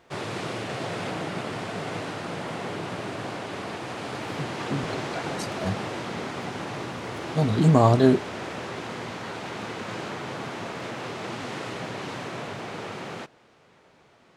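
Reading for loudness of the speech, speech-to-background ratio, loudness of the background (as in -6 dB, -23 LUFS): -22.5 LUFS, 10.5 dB, -33.0 LUFS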